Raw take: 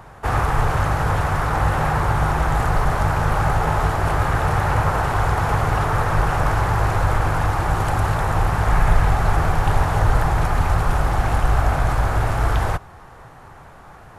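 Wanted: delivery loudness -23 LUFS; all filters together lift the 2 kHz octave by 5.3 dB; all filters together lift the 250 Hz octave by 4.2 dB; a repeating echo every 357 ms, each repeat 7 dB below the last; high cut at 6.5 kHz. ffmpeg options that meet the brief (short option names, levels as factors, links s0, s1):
-af "lowpass=6500,equalizer=f=250:t=o:g=7,equalizer=f=2000:t=o:g=7,aecho=1:1:357|714|1071|1428|1785:0.447|0.201|0.0905|0.0407|0.0183,volume=0.531"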